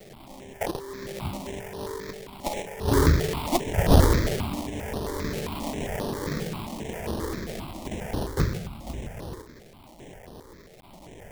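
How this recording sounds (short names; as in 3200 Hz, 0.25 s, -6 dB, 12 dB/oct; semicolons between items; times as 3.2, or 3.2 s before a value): a quantiser's noise floor 8-bit, dither triangular; tremolo triangle 1 Hz, depth 45%; aliases and images of a low sample rate 1400 Hz, jitter 20%; notches that jump at a steady rate 7.5 Hz 270–7400 Hz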